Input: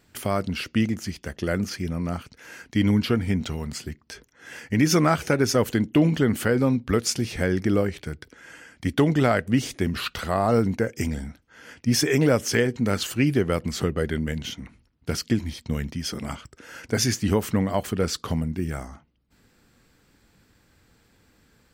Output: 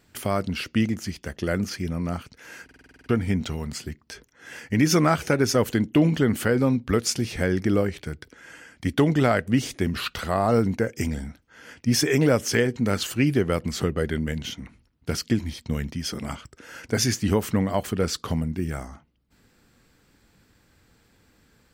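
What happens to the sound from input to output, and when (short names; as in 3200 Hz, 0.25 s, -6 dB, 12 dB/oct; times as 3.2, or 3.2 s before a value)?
2.64 stutter in place 0.05 s, 9 plays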